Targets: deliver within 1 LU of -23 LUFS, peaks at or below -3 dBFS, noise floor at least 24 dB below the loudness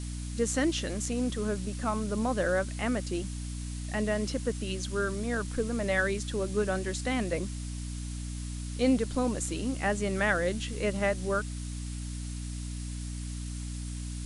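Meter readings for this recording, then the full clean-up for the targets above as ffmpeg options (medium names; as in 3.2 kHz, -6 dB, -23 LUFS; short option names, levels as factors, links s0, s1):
hum 60 Hz; highest harmonic 300 Hz; hum level -34 dBFS; noise floor -37 dBFS; noise floor target -56 dBFS; loudness -31.5 LUFS; peak level -14.0 dBFS; loudness target -23.0 LUFS
-> -af "bandreject=f=60:t=h:w=6,bandreject=f=120:t=h:w=6,bandreject=f=180:t=h:w=6,bandreject=f=240:t=h:w=6,bandreject=f=300:t=h:w=6"
-af "afftdn=nr=19:nf=-37"
-af "volume=2.66"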